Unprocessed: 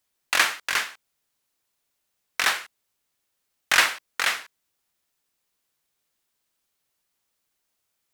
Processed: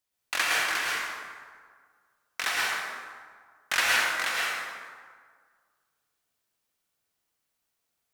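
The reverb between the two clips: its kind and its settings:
dense smooth reverb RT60 1.8 s, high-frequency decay 0.55×, pre-delay 95 ms, DRR −5 dB
level −8 dB

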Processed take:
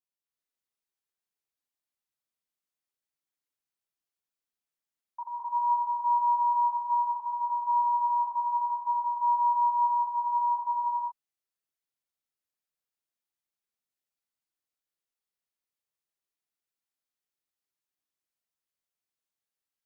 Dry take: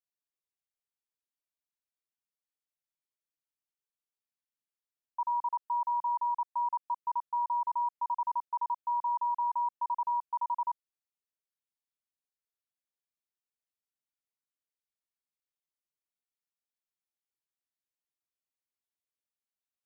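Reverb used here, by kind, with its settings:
reverb whose tail is shaped and stops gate 410 ms rising, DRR −5 dB
level −4.5 dB

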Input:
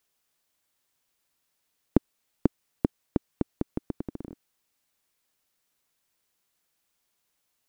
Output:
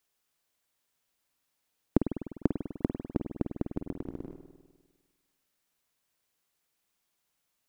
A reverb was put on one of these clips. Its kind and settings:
spring reverb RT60 1.4 s, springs 50 ms, chirp 50 ms, DRR 5.5 dB
level −3 dB

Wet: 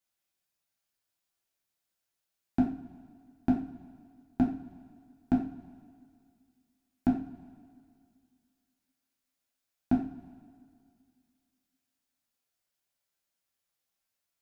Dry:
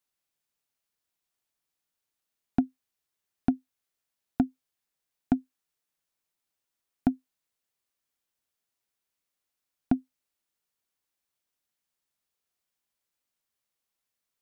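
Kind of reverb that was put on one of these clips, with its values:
coupled-rooms reverb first 0.4 s, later 2.2 s, from −18 dB, DRR −3 dB
level −4.5 dB

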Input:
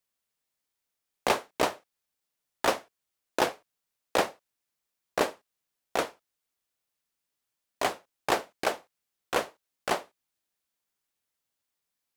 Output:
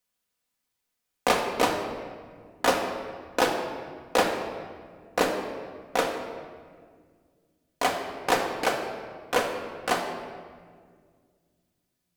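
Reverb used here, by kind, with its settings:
rectangular room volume 2,900 cubic metres, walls mixed, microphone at 1.9 metres
level +1.5 dB

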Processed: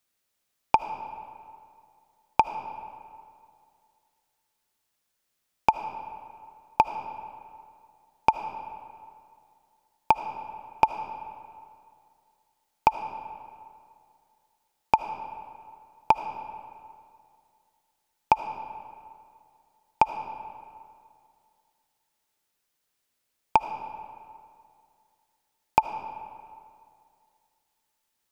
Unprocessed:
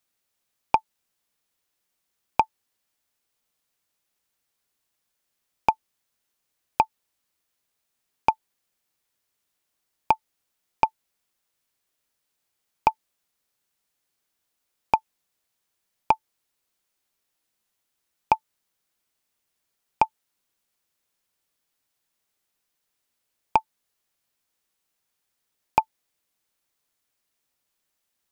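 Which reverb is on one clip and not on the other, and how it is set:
comb and all-pass reverb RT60 2.3 s, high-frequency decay 0.65×, pre-delay 35 ms, DRR 9 dB

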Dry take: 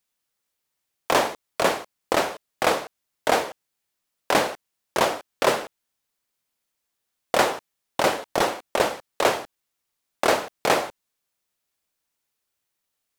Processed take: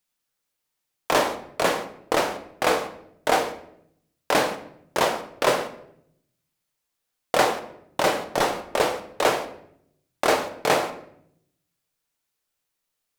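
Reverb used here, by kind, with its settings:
rectangular room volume 150 cubic metres, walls mixed, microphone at 0.44 metres
level −1 dB

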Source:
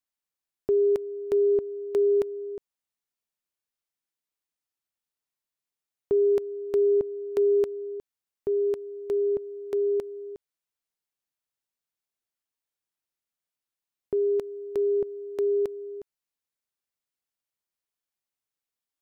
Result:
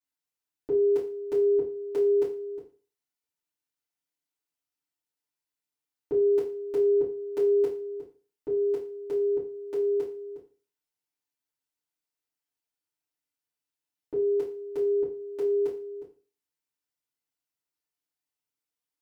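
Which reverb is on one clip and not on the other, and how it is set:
feedback delay network reverb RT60 0.37 s, low-frequency decay 1×, high-frequency decay 1×, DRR −9.5 dB
level −11 dB

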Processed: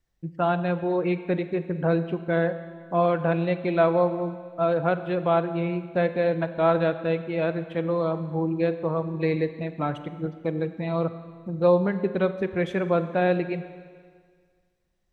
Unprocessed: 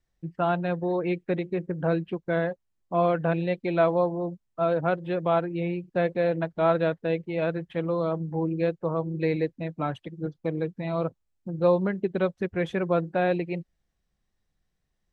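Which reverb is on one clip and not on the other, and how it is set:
four-comb reverb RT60 1.8 s, combs from 30 ms, DRR 11 dB
level +1.5 dB

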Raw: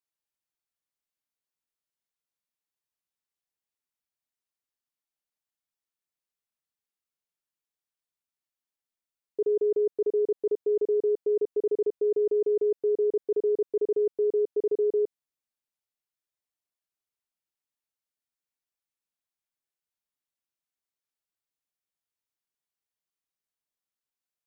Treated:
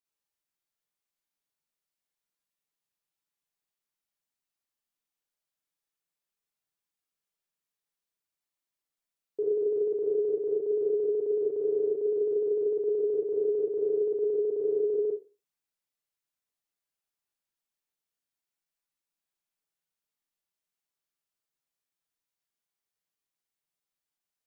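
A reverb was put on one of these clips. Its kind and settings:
four-comb reverb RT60 0.33 s, DRR −3 dB
level −3.5 dB

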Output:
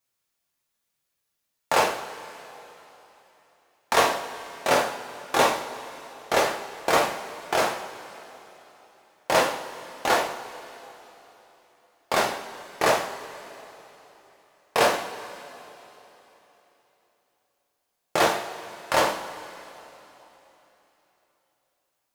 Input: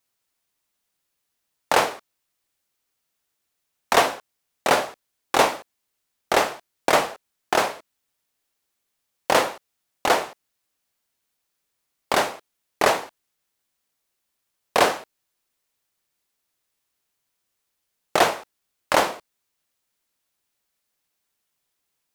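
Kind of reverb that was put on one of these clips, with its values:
coupled-rooms reverb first 0.47 s, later 3.6 s, from −17 dB, DRR −1 dB
level −5 dB

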